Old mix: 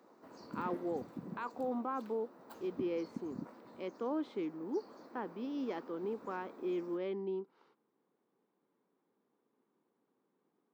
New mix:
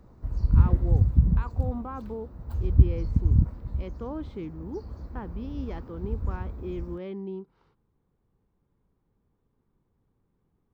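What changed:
background: add bass shelf 230 Hz +10 dB; master: remove high-pass 250 Hz 24 dB/octave

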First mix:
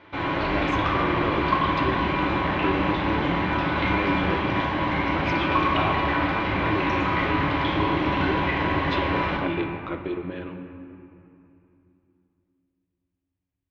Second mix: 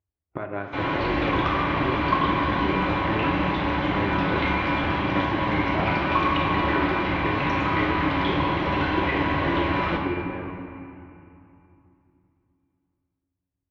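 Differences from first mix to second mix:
speech: add low-pass 1.6 kHz; background: entry +0.60 s

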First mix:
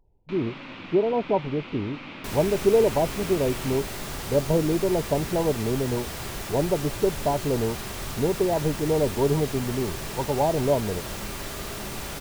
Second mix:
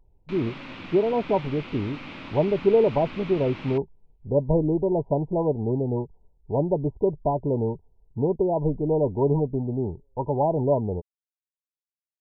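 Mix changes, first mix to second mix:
second sound: muted; reverb: off; master: add bass shelf 96 Hz +6 dB

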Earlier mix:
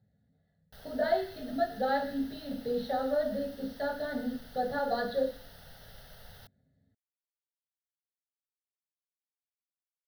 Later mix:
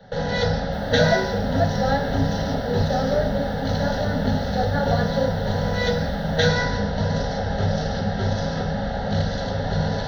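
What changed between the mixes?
speech +6.0 dB; first sound: unmuted

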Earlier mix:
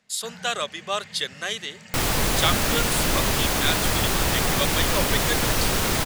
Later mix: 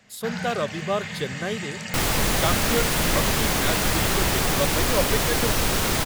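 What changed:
speech: remove frequency weighting ITU-R 468; first sound +12.0 dB

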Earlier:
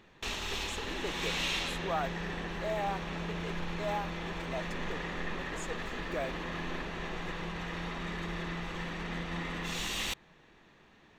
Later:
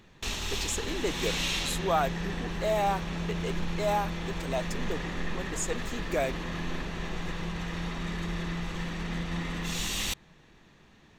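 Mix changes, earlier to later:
speech +7.0 dB; master: add tone controls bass +7 dB, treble +7 dB

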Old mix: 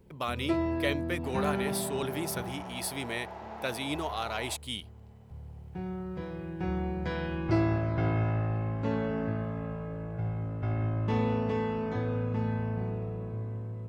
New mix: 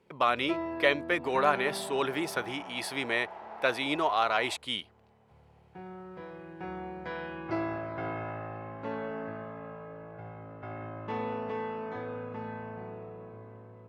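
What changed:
speech +9.0 dB; master: add band-pass filter 1.1 kHz, Q 0.58

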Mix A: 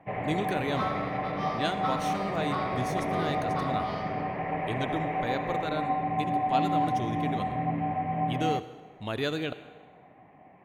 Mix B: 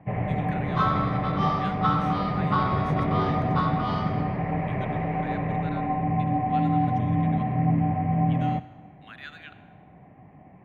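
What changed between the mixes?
speech: add ladder high-pass 1.3 kHz, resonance 45%; second sound +9.0 dB; master: add tone controls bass +13 dB, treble -10 dB

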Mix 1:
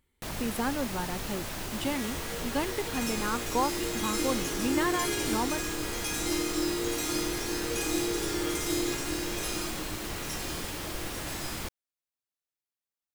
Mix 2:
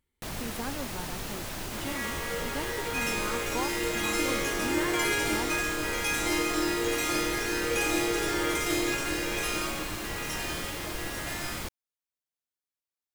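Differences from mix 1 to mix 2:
speech -6.5 dB; second sound: add high-order bell 1.2 kHz +9.5 dB 2.8 oct

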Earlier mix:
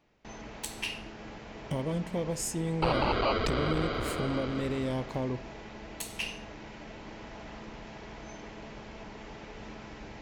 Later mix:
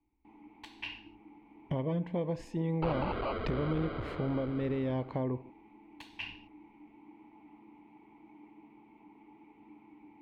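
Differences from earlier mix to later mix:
first sound: add vowel filter u; second sound -5.5 dB; master: add distance through air 350 m

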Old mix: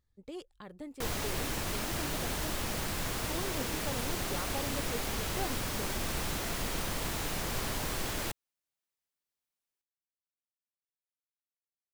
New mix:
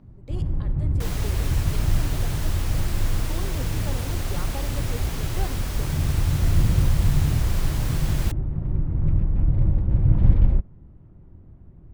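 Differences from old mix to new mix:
first sound: unmuted; reverb: on, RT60 1.6 s

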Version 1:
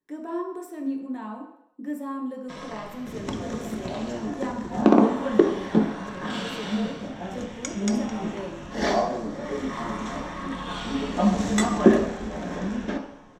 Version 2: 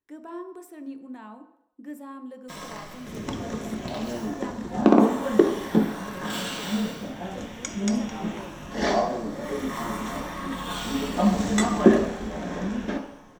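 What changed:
speech: send -10.0 dB; first sound: remove distance through air 99 m

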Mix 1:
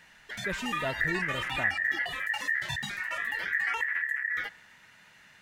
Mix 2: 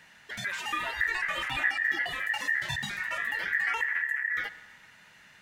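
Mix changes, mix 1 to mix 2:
speech: add high-pass 1.2 kHz 12 dB/octave; background: send +9.0 dB

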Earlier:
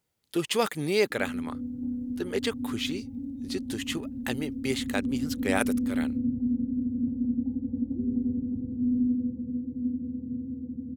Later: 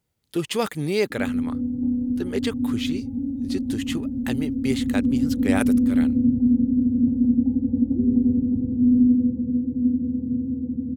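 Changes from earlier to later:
speech: add bass shelf 210 Hz +9.5 dB; background +9.0 dB

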